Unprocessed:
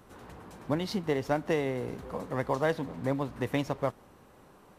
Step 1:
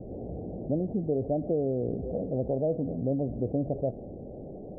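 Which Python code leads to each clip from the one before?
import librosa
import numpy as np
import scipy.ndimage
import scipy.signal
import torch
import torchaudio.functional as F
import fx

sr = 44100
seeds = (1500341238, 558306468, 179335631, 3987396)

y = scipy.signal.sosfilt(scipy.signal.butter(12, 700.0, 'lowpass', fs=sr, output='sos'), x)
y = fx.env_flatten(y, sr, amount_pct=50)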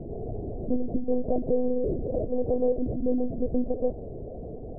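y = fx.lpc_monotone(x, sr, seeds[0], pitch_hz=250.0, order=8)
y = y * 10.0 ** (4.0 / 20.0)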